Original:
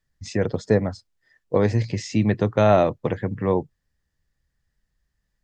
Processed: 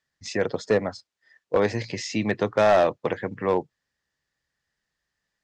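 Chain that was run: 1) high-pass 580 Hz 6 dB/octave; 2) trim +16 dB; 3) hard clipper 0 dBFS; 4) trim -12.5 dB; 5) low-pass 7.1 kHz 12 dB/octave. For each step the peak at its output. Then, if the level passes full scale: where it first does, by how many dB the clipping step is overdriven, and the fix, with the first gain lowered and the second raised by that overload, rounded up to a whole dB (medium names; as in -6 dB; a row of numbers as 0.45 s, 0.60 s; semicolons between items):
-8.5 dBFS, +7.5 dBFS, 0.0 dBFS, -12.5 dBFS, -12.0 dBFS; step 2, 7.5 dB; step 2 +8 dB, step 4 -4.5 dB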